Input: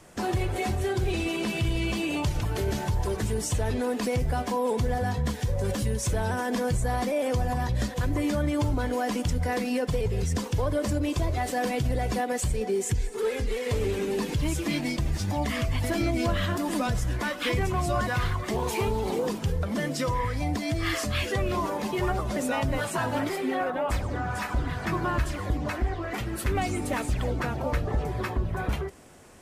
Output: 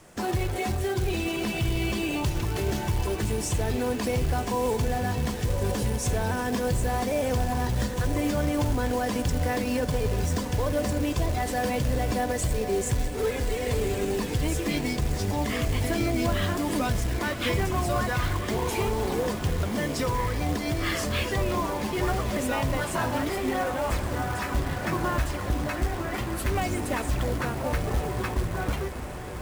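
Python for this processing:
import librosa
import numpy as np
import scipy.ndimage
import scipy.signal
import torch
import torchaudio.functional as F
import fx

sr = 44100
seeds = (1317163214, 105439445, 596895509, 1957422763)

y = fx.echo_diffused(x, sr, ms=1175, feedback_pct=74, wet_db=-11.0)
y = fx.quant_float(y, sr, bits=2)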